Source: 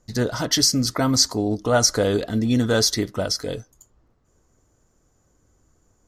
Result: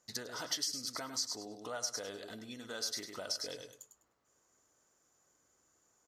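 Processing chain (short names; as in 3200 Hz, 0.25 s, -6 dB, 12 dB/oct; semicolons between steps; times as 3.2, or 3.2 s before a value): on a send: feedback echo 0.101 s, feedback 23%, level -8.5 dB; on the sum: compressor 12:1, threshold -29 dBFS, peak gain reduction 17.5 dB; HPF 1100 Hz 6 dB/oct; gain -3 dB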